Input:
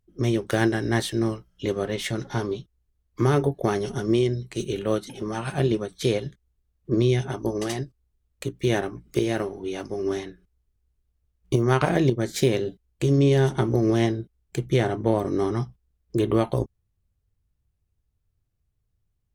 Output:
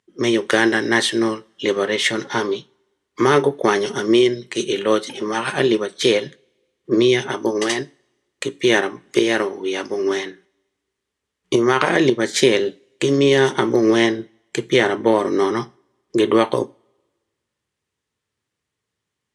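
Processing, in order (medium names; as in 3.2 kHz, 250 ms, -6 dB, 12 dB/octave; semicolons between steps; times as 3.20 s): cabinet simulation 320–9500 Hz, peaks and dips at 690 Hz -7 dB, 1 kHz +3 dB, 1.9 kHz +6 dB, 3.2 kHz +4 dB; two-slope reverb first 0.34 s, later 1.5 s, from -25 dB, DRR 17.5 dB; loudness maximiser +10.5 dB; trim -1 dB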